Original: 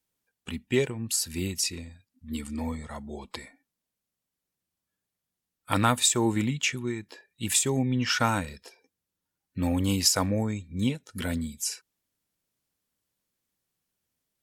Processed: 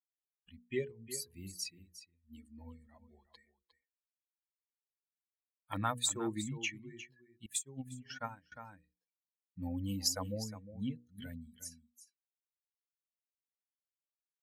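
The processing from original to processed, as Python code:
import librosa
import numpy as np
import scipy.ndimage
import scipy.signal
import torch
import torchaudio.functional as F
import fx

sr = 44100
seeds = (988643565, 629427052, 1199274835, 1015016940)

p1 = fx.bin_expand(x, sr, power=2.0)
p2 = fx.peak_eq(p1, sr, hz=61.0, db=-14.5, octaves=0.3)
p3 = fx.hum_notches(p2, sr, base_hz=60, count=8)
p4 = p3 + fx.echo_single(p3, sr, ms=357, db=-13.0, dry=0)
p5 = fx.upward_expand(p4, sr, threshold_db=-39.0, expansion=2.5, at=(7.46, 8.52))
y = F.gain(torch.from_numpy(p5), -8.0).numpy()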